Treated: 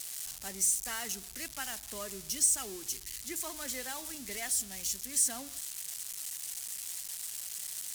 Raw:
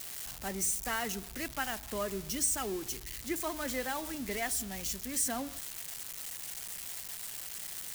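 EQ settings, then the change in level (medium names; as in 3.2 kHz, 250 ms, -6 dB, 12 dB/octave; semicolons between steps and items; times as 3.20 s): peaking EQ 8.1 kHz +13 dB 2.7 oct; -8.5 dB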